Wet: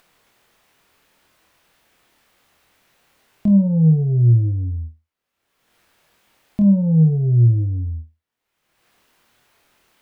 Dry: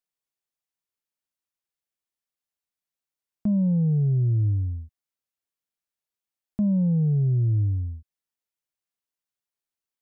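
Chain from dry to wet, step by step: tone controls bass -1 dB, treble -12 dB; upward compressor, threshold -46 dBFS; flutter echo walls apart 4.3 m, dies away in 0.24 s; trim +6.5 dB

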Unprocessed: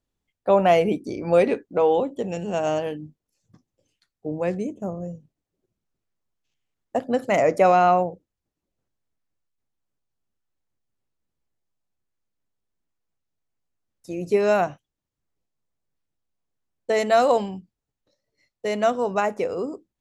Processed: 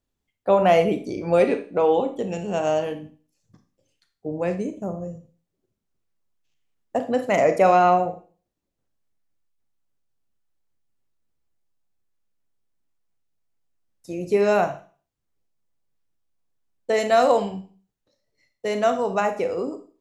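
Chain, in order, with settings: Schroeder reverb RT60 0.4 s, combs from 28 ms, DRR 8 dB

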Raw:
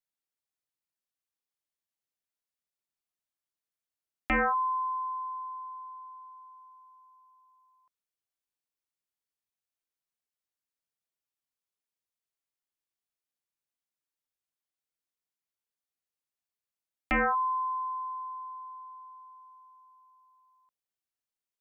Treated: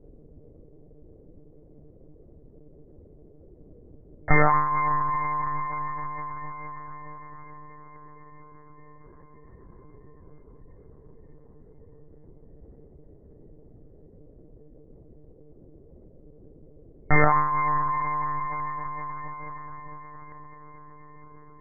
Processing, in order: on a send at -6 dB: reverberation RT60 1.5 s, pre-delay 4 ms; on the sum: FFT band-pass 100–2200 Hz; band noise 130–500 Hz -62 dBFS; comb of notches 310 Hz; echo that smears into a reverb 469 ms, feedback 70%, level -15 dB; monotone LPC vocoder at 8 kHz 150 Hz; bass shelf 160 Hz +9.5 dB; endings held to a fixed fall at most 570 dB/s; trim +8 dB

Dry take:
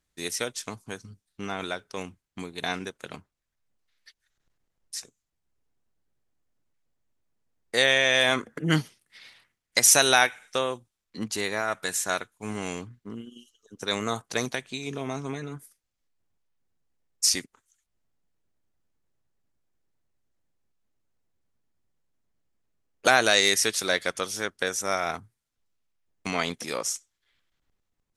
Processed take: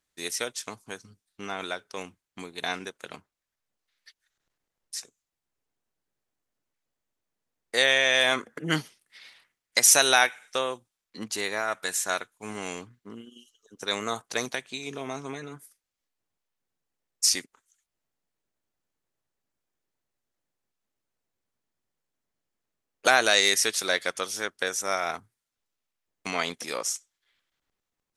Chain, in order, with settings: bass shelf 200 Hz -11.5 dB

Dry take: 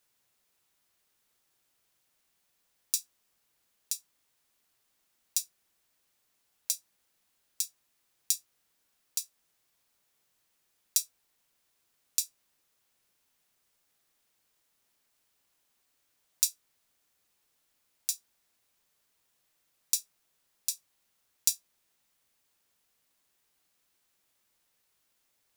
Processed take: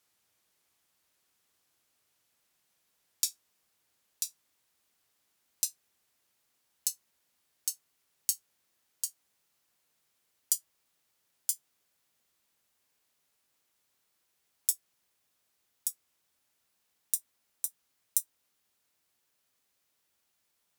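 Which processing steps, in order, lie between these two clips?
gliding tape speed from 85% -> 161%; high-pass 49 Hz

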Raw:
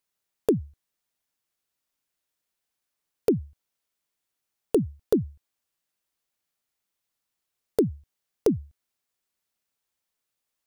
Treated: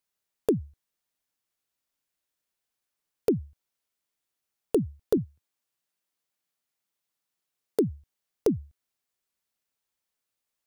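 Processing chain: 5.17–7.79 s: high-pass 99 Hz 24 dB/octave; trim -2 dB

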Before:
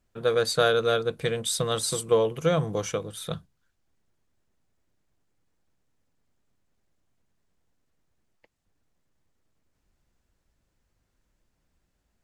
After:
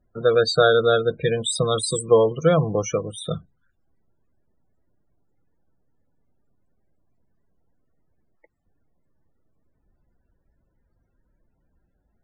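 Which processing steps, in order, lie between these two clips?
loudest bins only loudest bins 32; trim +6 dB

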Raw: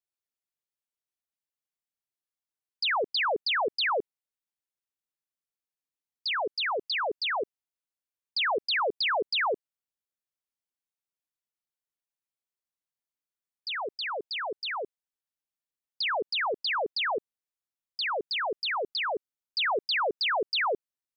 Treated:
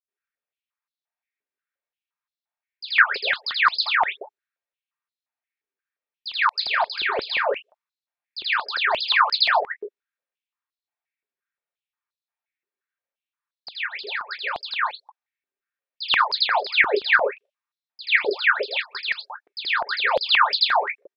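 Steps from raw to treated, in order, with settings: chunks repeated in reverse 119 ms, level -13.5 dB; 6.48–7.39 s: doubling 35 ms -9 dB; bands offset in time highs, lows 80 ms, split 4.6 kHz; level-controlled noise filter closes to 2.8 kHz, open at -27 dBFS; reverberation, pre-delay 3 ms, DRR 0.5 dB; step-sequenced high-pass 5.7 Hz 380–4100 Hz; trim +1.5 dB

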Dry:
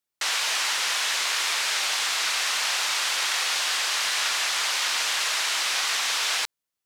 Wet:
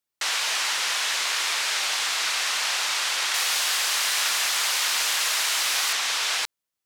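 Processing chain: 3.34–5.93 s: peaking EQ 16 kHz +11.5 dB 0.85 oct

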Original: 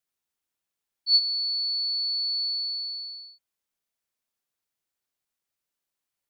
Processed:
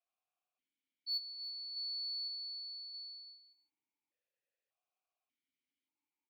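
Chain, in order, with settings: 1.32–1.72 s: companding laws mixed up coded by A; 2.27–3.27 s: comb 6.4 ms, depth 51%; saturation -21 dBFS, distortion -12 dB; delay 316 ms -10 dB; stepped vowel filter 1.7 Hz; trim +8 dB

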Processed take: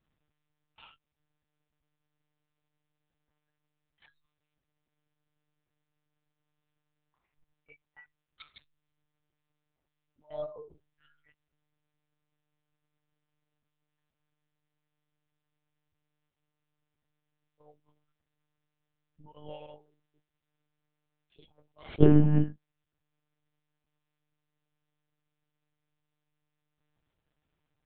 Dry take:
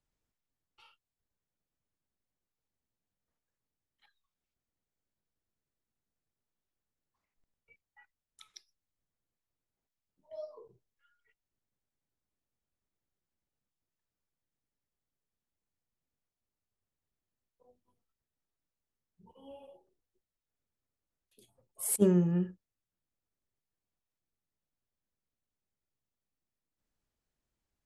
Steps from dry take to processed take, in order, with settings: monotone LPC vocoder at 8 kHz 150 Hz; trim +7 dB

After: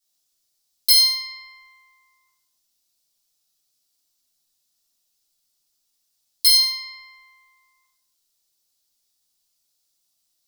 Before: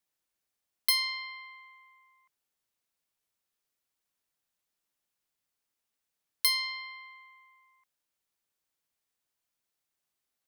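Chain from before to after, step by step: resonant high shelf 3.1 kHz +13 dB, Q 1.5; in parallel at -11.5 dB: saturation -11.5 dBFS, distortion -9 dB; on the sum: simulated room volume 190 m³, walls mixed, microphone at 3.5 m; trim -11 dB

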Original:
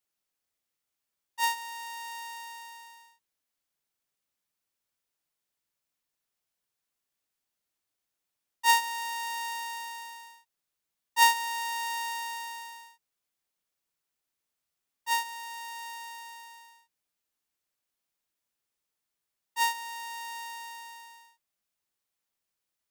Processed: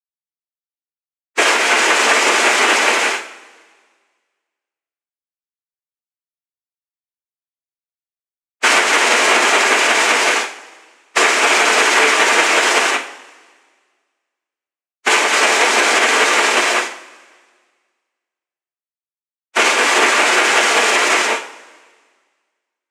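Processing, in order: spectral levelling over time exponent 0.6; high-pass 1.1 kHz 12 dB/octave; compression 8:1, threshold -35 dBFS, peak gain reduction 19 dB; flange 0.75 Hz, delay 5.2 ms, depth 4 ms, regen +56%; bit crusher 9-bit; loudest bins only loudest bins 8; noise-vocoded speech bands 4; filtered feedback delay 91 ms, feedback 64%, level -22 dB; two-slope reverb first 0.43 s, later 1.7 s, from -18 dB, DRR 2.5 dB; loudness maximiser +33.5 dB; trim -1 dB

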